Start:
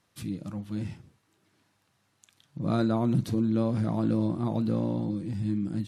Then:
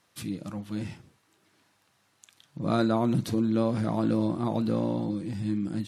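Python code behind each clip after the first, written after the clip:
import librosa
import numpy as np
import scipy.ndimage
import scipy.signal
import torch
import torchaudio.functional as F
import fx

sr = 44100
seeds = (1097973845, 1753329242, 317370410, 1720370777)

y = fx.low_shelf(x, sr, hz=230.0, db=-8.5)
y = y * librosa.db_to_amplitude(4.5)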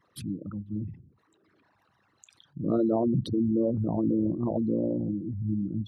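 y = fx.envelope_sharpen(x, sr, power=3.0)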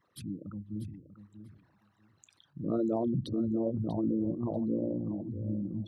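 y = fx.echo_feedback(x, sr, ms=641, feedback_pct=15, wet_db=-12)
y = y * librosa.db_to_amplitude(-5.0)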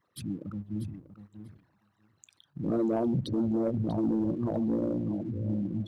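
y = fx.leveller(x, sr, passes=1)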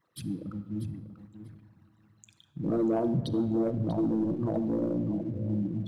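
y = fx.room_shoebox(x, sr, seeds[0], volume_m3=2800.0, walls='mixed', distance_m=0.64)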